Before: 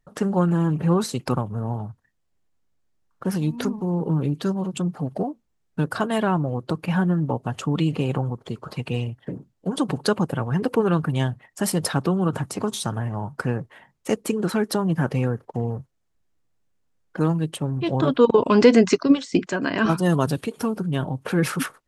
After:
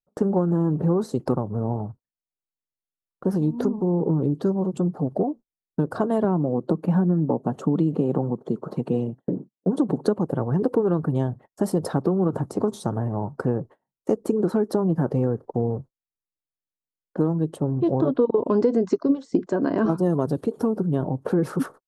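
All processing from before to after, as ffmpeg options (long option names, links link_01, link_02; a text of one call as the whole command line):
ffmpeg -i in.wav -filter_complex "[0:a]asettb=1/sr,asplit=3[link_01][link_02][link_03];[link_01]atrim=end=6.244[link_04];[link_02]atrim=start=6.24:end=10.14,asetpts=PTS-STARTPTS,afade=type=in:duration=0.004:curve=qsin,afade=type=out:start_time=3.896:duration=0.004:curve=qsin,highpass=frequency=180:width_type=q:width=1.6,bandreject=frequency=4900:width=8.5[link_05];[link_03]atrim=start=10.136[link_06];[link_04][link_05]acrossfade=duration=0.004:curve1=hsin:curve2=qsin[link_07];[link_07][link_06]acrossfade=duration=0.004:curve1=qsin:curve2=hsin,agate=range=-28dB:threshold=-40dB:ratio=16:detection=peak,firequalizer=gain_entry='entry(110,0);entry(360,7);entry(2400,-19);entry(4200,-11)':delay=0.05:min_phase=1,acompressor=threshold=-17dB:ratio=6" out.wav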